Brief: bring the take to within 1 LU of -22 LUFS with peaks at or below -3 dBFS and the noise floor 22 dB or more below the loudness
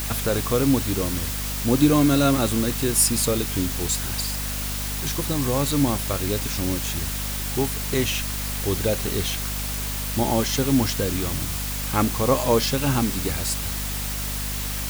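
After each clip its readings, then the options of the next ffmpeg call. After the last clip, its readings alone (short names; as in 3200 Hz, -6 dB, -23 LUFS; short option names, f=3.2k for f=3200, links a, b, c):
hum 50 Hz; harmonics up to 250 Hz; hum level -28 dBFS; noise floor -28 dBFS; noise floor target -45 dBFS; loudness -23.0 LUFS; peak -5.0 dBFS; loudness target -22.0 LUFS
-> -af "bandreject=f=50:t=h:w=4,bandreject=f=100:t=h:w=4,bandreject=f=150:t=h:w=4,bandreject=f=200:t=h:w=4,bandreject=f=250:t=h:w=4"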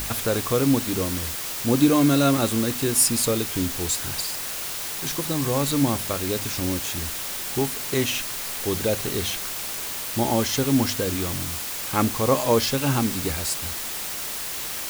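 hum none; noise floor -31 dBFS; noise floor target -46 dBFS
-> -af "afftdn=nr=15:nf=-31"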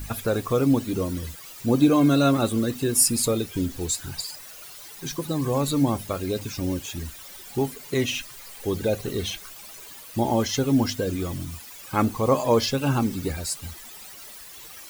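noise floor -43 dBFS; noise floor target -47 dBFS
-> -af "afftdn=nr=6:nf=-43"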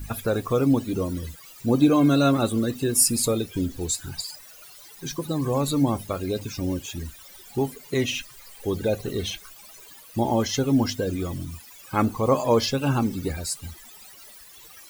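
noise floor -47 dBFS; loudness -24.5 LUFS; peak -6.5 dBFS; loudness target -22.0 LUFS
-> -af "volume=2.5dB"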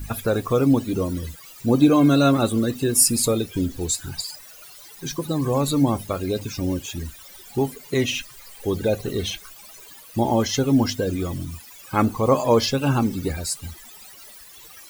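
loudness -22.0 LUFS; peak -4.0 dBFS; noise floor -45 dBFS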